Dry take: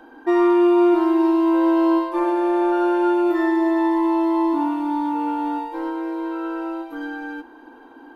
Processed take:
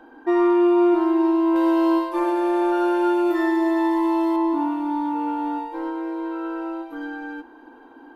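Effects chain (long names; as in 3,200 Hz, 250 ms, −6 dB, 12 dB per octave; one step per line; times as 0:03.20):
high-shelf EQ 3,600 Hz −6 dB, from 0:01.56 +6.5 dB, from 0:04.36 −4.5 dB
level −1.5 dB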